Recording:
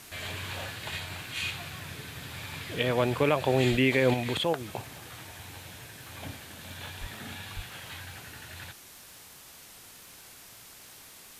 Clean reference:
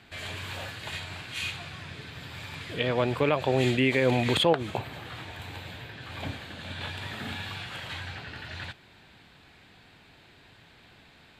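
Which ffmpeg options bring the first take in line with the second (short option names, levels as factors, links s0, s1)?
-filter_complex "[0:a]adeclick=t=4,asplit=3[s0][s1][s2];[s0]afade=t=out:st=3.7:d=0.02[s3];[s1]highpass=f=140:w=0.5412,highpass=f=140:w=1.3066,afade=t=in:st=3.7:d=0.02,afade=t=out:st=3.82:d=0.02[s4];[s2]afade=t=in:st=3.82:d=0.02[s5];[s3][s4][s5]amix=inputs=3:normalize=0,asplit=3[s6][s7][s8];[s6]afade=t=out:st=7:d=0.02[s9];[s7]highpass=f=140:w=0.5412,highpass=f=140:w=1.3066,afade=t=in:st=7:d=0.02,afade=t=out:st=7.12:d=0.02[s10];[s8]afade=t=in:st=7.12:d=0.02[s11];[s9][s10][s11]amix=inputs=3:normalize=0,asplit=3[s12][s13][s14];[s12]afade=t=out:st=7.55:d=0.02[s15];[s13]highpass=f=140:w=0.5412,highpass=f=140:w=1.3066,afade=t=in:st=7.55:d=0.02,afade=t=out:st=7.67:d=0.02[s16];[s14]afade=t=in:st=7.67:d=0.02[s17];[s15][s16][s17]amix=inputs=3:normalize=0,afwtdn=0.0035,asetnsamples=n=441:p=0,asendcmd='4.14 volume volume 5.5dB',volume=1"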